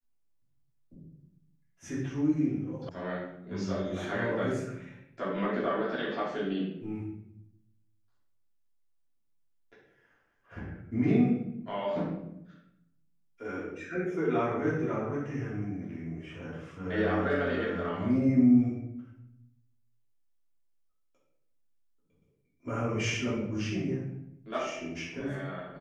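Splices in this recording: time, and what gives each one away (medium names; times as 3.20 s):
2.89 s: sound stops dead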